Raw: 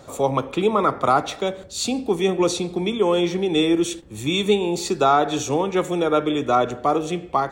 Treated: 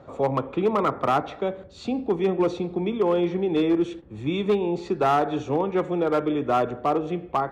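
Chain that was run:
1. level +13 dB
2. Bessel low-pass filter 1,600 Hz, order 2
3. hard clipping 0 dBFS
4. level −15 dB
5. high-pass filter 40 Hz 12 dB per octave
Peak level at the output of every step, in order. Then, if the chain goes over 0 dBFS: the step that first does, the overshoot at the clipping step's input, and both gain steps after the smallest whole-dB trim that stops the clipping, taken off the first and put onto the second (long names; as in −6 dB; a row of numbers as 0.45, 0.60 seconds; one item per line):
+7.5, +6.0, 0.0, −15.0, −13.5 dBFS
step 1, 6.0 dB
step 1 +7 dB, step 4 −9 dB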